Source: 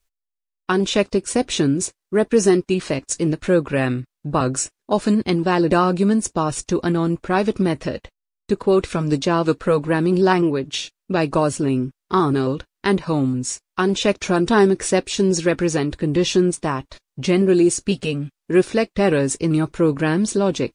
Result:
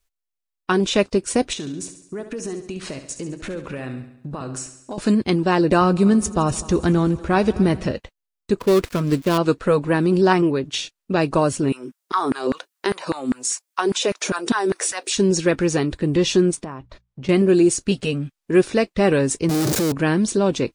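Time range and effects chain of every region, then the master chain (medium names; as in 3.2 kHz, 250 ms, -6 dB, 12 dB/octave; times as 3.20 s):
1.53–4.98 s: compression 5:1, threshold -28 dBFS + feedback delay 69 ms, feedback 54%, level -10.5 dB
5.81–7.92 s: peaking EQ 64 Hz +14.5 dB 1.3 oct + multi-head delay 82 ms, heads all three, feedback 55%, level -23.5 dB
8.59–9.38 s: dead-time distortion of 0.17 ms + band-stop 810 Hz, Q 7.2
11.72–15.17 s: treble shelf 5.2 kHz +10.5 dB + compression 3:1, threshold -20 dBFS + LFO high-pass saw down 5 Hz 220–1700 Hz
16.64–17.29 s: low-pass 1.6 kHz 6 dB/octave + hum notches 60/120/180 Hz + compression 2.5:1, threshold -33 dBFS
19.49–19.92 s: one-bit comparator + high-pass 120 Hz + high-order bell 1.6 kHz -8.5 dB 2.4 oct
whole clip: none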